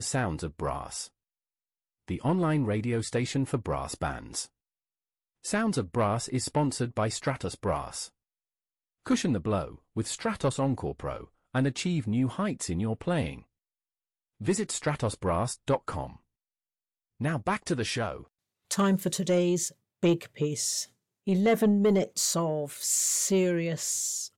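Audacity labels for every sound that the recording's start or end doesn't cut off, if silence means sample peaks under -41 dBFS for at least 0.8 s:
2.080000	4.450000	sound
5.450000	8.060000	sound
9.060000	13.390000	sound
14.410000	16.160000	sound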